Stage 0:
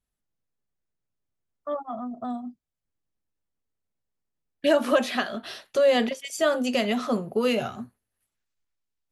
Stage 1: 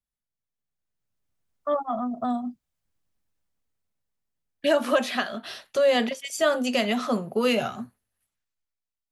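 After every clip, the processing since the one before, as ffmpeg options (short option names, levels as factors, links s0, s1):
-filter_complex "[0:a]acrossover=split=130[s0][s1];[s0]acompressor=threshold=0.00112:ratio=6[s2];[s2][s1]amix=inputs=2:normalize=0,equalizer=f=370:t=o:w=0.98:g=-4,dynaudnorm=f=120:g=17:m=5.31,volume=0.398"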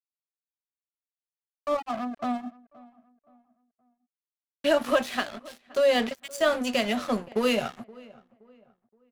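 -filter_complex "[0:a]aeval=exprs='sgn(val(0))*max(abs(val(0))-0.0168,0)':c=same,asplit=2[s0][s1];[s1]adelay=522,lowpass=f=1800:p=1,volume=0.0794,asplit=2[s2][s3];[s3]adelay=522,lowpass=f=1800:p=1,volume=0.37,asplit=2[s4][s5];[s5]adelay=522,lowpass=f=1800:p=1,volume=0.37[s6];[s0][s2][s4][s6]amix=inputs=4:normalize=0"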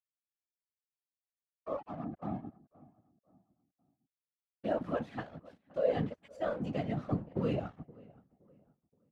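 -af "afftfilt=real='hypot(re,im)*cos(2*PI*random(0))':imag='hypot(re,im)*sin(2*PI*random(1))':win_size=512:overlap=0.75,asubboost=boost=3.5:cutoff=150,bandpass=f=250:t=q:w=0.52:csg=0"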